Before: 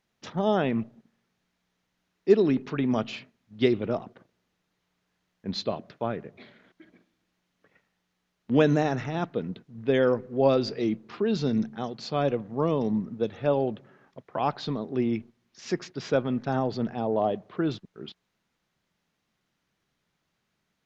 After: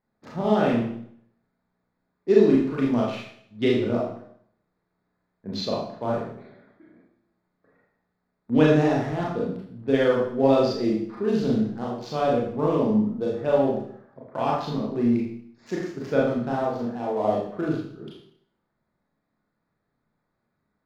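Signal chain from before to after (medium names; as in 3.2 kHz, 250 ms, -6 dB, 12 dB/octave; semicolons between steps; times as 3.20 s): local Wiener filter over 15 samples; 16.50–17.24 s: bass shelf 320 Hz -9 dB; Schroeder reverb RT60 0.62 s, combs from 26 ms, DRR -4.5 dB; trim -2 dB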